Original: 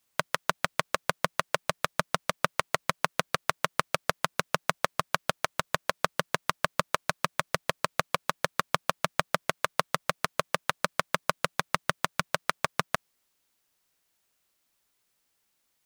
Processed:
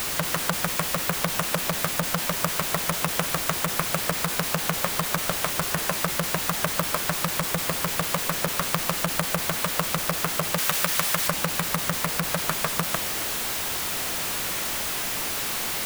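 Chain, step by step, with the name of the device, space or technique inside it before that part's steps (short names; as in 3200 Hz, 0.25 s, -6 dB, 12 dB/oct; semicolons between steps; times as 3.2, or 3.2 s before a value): early CD player with a faulty converter (zero-crossing step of -18 dBFS; clock jitter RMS 0.047 ms); 10.58–11.28 tilt shelf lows -4 dB; gain -2.5 dB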